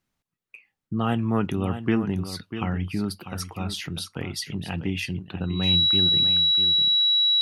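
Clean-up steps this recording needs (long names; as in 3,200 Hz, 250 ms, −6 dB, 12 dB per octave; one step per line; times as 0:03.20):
notch filter 3,900 Hz, Q 30
echo removal 645 ms −10.5 dB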